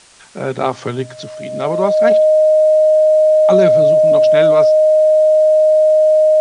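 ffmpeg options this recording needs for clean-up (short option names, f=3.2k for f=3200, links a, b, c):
-af "bandreject=f=620:w=30,agate=range=-21dB:threshold=-23dB"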